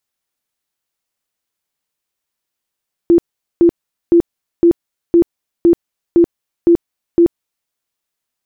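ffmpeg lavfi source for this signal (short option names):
-f lavfi -i "aevalsrc='0.562*sin(2*PI*341*mod(t,0.51))*lt(mod(t,0.51),28/341)':d=4.59:s=44100"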